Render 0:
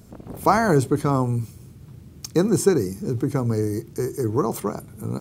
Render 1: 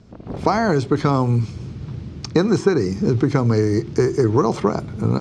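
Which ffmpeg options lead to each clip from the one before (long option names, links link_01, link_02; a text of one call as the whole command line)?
ffmpeg -i in.wav -filter_complex "[0:a]acrossover=split=950|2100[link_01][link_02][link_03];[link_01]acompressor=threshold=-26dB:ratio=4[link_04];[link_02]acompressor=threshold=-39dB:ratio=4[link_05];[link_03]acompressor=threshold=-38dB:ratio=4[link_06];[link_04][link_05][link_06]amix=inputs=3:normalize=0,lowpass=frequency=5400:width=0.5412,lowpass=frequency=5400:width=1.3066,dynaudnorm=framelen=200:gausssize=3:maxgain=12.5dB" out.wav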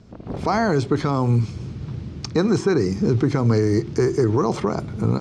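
ffmpeg -i in.wav -af "alimiter=limit=-9.5dB:level=0:latency=1:release=35" out.wav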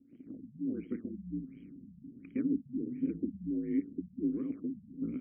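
ffmpeg -i in.wav -filter_complex "[0:a]aeval=exprs='val(0)*sin(2*PI*55*n/s)':channel_layout=same,asplit=3[link_01][link_02][link_03];[link_01]bandpass=frequency=270:width_type=q:width=8,volume=0dB[link_04];[link_02]bandpass=frequency=2290:width_type=q:width=8,volume=-6dB[link_05];[link_03]bandpass=frequency=3010:width_type=q:width=8,volume=-9dB[link_06];[link_04][link_05][link_06]amix=inputs=3:normalize=0,afftfilt=real='re*lt(b*sr/1024,210*pow(3300/210,0.5+0.5*sin(2*PI*1.4*pts/sr)))':imag='im*lt(b*sr/1024,210*pow(3300/210,0.5+0.5*sin(2*PI*1.4*pts/sr)))':win_size=1024:overlap=0.75,volume=-2.5dB" out.wav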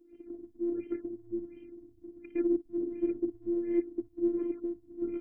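ffmpeg -i in.wav -af "afftfilt=real='hypot(re,im)*cos(PI*b)':imag='0':win_size=512:overlap=0.75,volume=6.5dB" out.wav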